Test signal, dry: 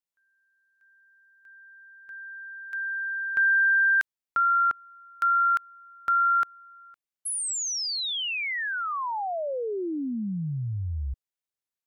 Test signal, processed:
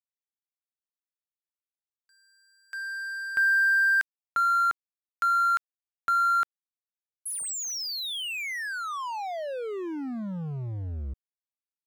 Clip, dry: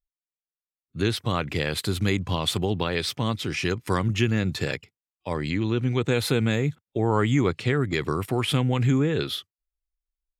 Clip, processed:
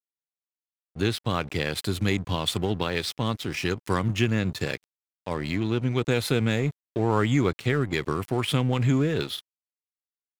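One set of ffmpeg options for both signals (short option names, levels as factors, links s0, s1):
-af "aeval=exprs='sgn(val(0))*max(abs(val(0))-0.0112,0)':c=same"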